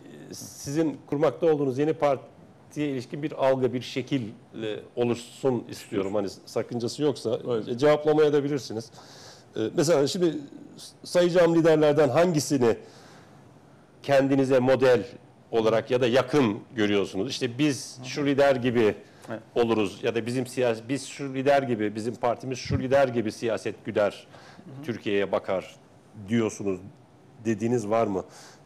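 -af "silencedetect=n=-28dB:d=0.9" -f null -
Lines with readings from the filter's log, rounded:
silence_start: 12.73
silence_end: 14.09 | silence_duration: 1.35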